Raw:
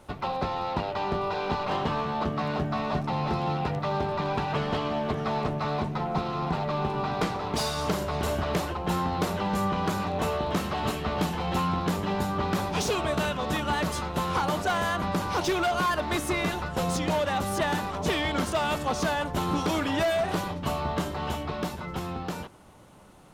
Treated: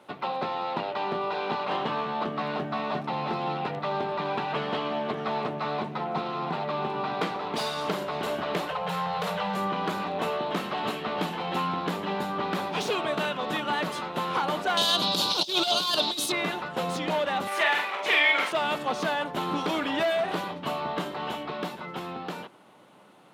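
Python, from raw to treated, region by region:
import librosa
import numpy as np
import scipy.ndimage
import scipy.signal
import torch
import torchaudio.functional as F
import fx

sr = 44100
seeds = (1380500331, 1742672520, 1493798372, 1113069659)

y = fx.chain(x, sr, fx.cheby1_bandstop(low_hz=200.0, high_hz=430.0, order=5),
    fx.overload_stage(gain_db=23.5),
    fx.env_flatten(amount_pct=70), at=(8.69, 9.56))
y = fx.chain(y, sr, fx.high_shelf_res(hz=2800.0, db=13.0, q=3.0),
    fx.over_compress(threshold_db=-24.0, ratio=-0.5), at=(14.77, 16.32))
y = fx.chain(y, sr, fx.highpass(hz=540.0, slope=12),
    fx.peak_eq(hz=2200.0, db=11.0, octaves=0.68),
    fx.doubler(ms=44.0, db=-4.0), at=(17.47, 18.52))
y = scipy.signal.sosfilt(scipy.signal.bessel(4, 230.0, 'highpass', norm='mag', fs=sr, output='sos'), y)
y = fx.high_shelf_res(y, sr, hz=4600.0, db=-6.0, q=1.5)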